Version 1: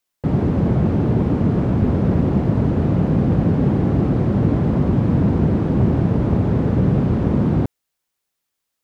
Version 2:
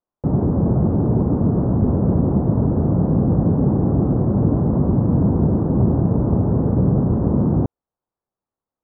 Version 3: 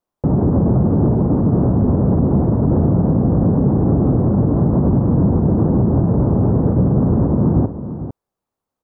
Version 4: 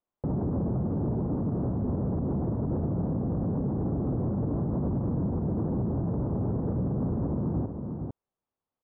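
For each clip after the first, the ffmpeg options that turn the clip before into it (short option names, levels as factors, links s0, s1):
-af "lowpass=f=1100:w=0.5412,lowpass=f=1100:w=1.3066"
-af "alimiter=limit=0.211:level=0:latency=1:release=61,aecho=1:1:449:0.266,volume=2"
-af "alimiter=limit=0.211:level=0:latency=1:release=49,aresample=8000,aresample=44100,volume=0.376"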